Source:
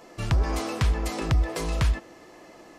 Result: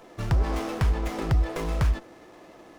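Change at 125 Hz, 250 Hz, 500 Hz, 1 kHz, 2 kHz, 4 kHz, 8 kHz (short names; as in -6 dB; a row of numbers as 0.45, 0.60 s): 0.0, 0.0, 0.0, -0.5, -2.5, -5.0, -6.5 dB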